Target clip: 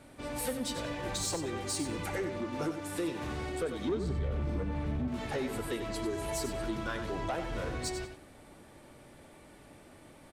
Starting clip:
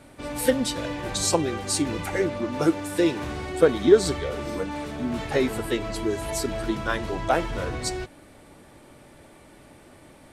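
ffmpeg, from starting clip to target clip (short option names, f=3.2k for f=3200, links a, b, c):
-filter_complex "[0:a]asettb=1/sr,asplit=3[a][b][c];[a]atrim=end=3.894[d];[b]atrim=start=3.89:end=5.08,asetpts=PTS-STARTPTS,afade=t=in:d=0.004:c=qsin,afade=t=out:st=1.186:d=0.004:c=qsin,bass=f=250:g=15,treble=f=4k:g=-10[e];[c]atrim=start=5.076[f];[d][e]acrossfade=d=0.004:c1=hsin:c2=qsin[g];[g][f]acrossfade=d=0.004:c1=qsin:c2=hsin,acompressor=threshold=-25dB:ratio=3,asoftclip=type=tanh:threshold=-21.5dB,aecho=1:1:94|188|282:0.355|0.0816|0.0188,volume=-5dB"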